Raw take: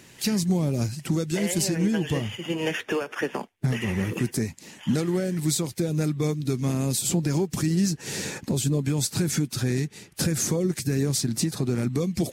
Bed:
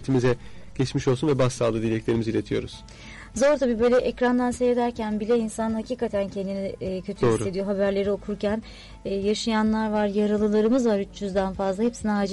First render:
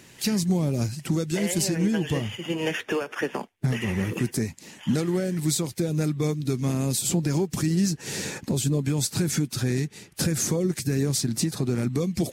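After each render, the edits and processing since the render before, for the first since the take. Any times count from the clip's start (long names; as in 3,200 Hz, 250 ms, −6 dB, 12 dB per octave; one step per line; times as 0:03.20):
no processing that can be heard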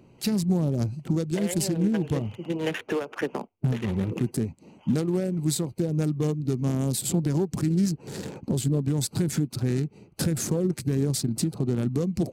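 adaptive Wiener filter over 25 samples
dynamic equaliser 6,000 Hz, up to −5 dB, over −47 dBFS, Q 2.4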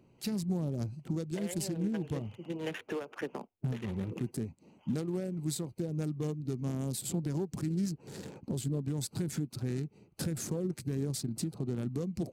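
level −9 dB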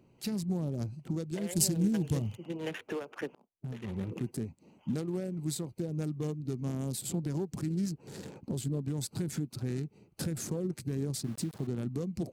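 0:01.55–0:02.37: bass and treble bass +7 dB, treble +13 dB
0:03.35–0:04.00: fade in
0:11.24–0:11.67: centre clipping without the shift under −46.5 dBFS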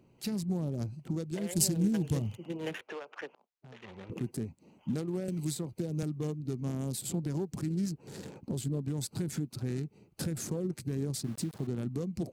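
0:02.81–0:04.10: three-way crossover with the lows and the highs turned down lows −15 dB, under 480 Hz, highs −22 dB, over 6,600 Hz
0:05.28–0:06.03: multiband upward and downward compressor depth 70%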